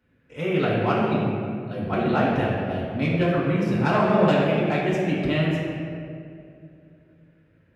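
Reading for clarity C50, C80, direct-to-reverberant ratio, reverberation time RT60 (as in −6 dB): −1.0 dB, 1.0 dB, −8.0 dB, 2.4 s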